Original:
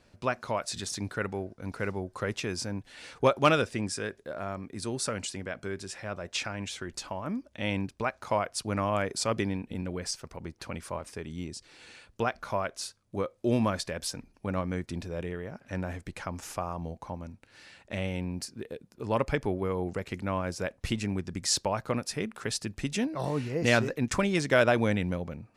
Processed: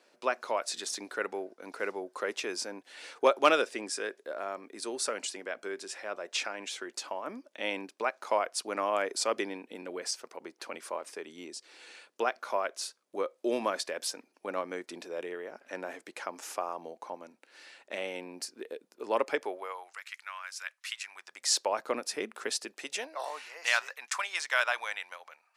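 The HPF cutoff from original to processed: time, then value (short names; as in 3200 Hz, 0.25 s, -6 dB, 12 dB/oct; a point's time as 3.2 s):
HPF 24 dB/oct
19.33 s 330 Hz
20.02 s 1300 Hz
20.99 s 1300 Hz
21.79 s 310 Hz
22.5 s 310 Hz
23.58 s 890 Hz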